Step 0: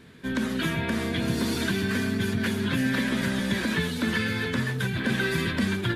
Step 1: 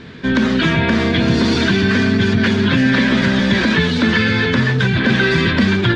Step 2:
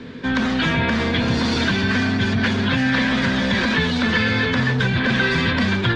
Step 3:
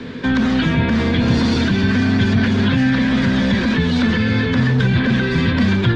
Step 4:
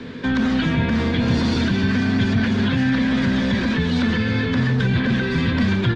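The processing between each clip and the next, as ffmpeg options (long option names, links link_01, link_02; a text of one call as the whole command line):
ffmpeg -i in.wav -filter_complex "[0:a]asplit=2[link_01][link_02];[link_02]alimiter=limit=-24dB:level=0:latency=1,volume=2dB[link_03];[link_01][link_03]amix=inputs=2:normalize=0,lowpass=frequency=5600:width=0.5412,lowpass=frequency=5600:width=1.3066,volume=7.5dB" out.wav
ffmpeg -i in.wav -filter_complex "[0:a]equalizer=frequency=250:width_type=o:width=0.33:gain=9,equalizer=frequency=500:width_type=o:width=0.33:gain=9,equalizer=frequency=1000:width_type=o:width=0.33:gain=3,acrossover=split=160|680[link_01][link_02][link_03];[link_02]asoftclip=type=tanh:threshold=-23dB[link_04];[link_01][link_04][link_03]amix=inputs=3:normalize=0,volume=-3dB" out.wav
ffmpeg -i in.wav -filter_complex "[0:a]acrossover=split=400[link_01][link_02];[link_02]acompressor=threshold=-28dB:ratio=6[link_03];[link_01][link_03]amix=inputs=2:normalize=0,volume=5.5dB" out.wav
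ffmpeg -i in.wav -af "aecho=1:1:150:0.2,volume=-3.5dB" out.wav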